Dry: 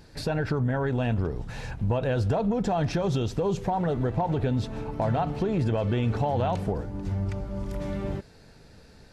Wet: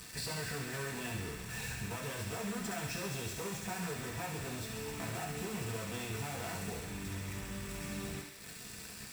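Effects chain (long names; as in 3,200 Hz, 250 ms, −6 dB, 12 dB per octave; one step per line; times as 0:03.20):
wavefolder on the positive side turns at −25 dBFS
high-pass filter 48 Hz 12 dB per octave
high-shelf EQ 3,900 Hz +6 dB
hum removal 102.6 Hz, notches 3
downward compressor 3 to 1, threshold −43 dBFS, peak gain reduction 14.5 dB
bit-depth reduction 8 bits, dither none
delay with a high-pass on its return 68 ms, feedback 76%, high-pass 1,700 Hz, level −5 dB
convolution reverb RT60 1.0 s, pre-delay 3 ms, DRR 0 dB
level +1.5 dB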